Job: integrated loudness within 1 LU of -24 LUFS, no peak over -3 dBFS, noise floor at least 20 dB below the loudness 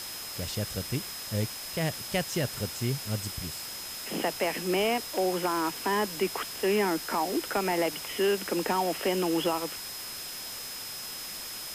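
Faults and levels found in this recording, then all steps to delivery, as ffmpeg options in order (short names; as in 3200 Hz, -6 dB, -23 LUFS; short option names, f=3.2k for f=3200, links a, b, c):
steady tone 5100 Hz; tone level -41 dBFS; noise floor -39 dBFS; noise floor target -50 dBFS; loudness -30.0 LUFS; peak -15.5 dBFS; loudness target -24.0 LUFS
-> -af "bandreject=f=5.1k:w=30"
-af "afftdn=nr=11:nf=-39"
-af "volume=6dB"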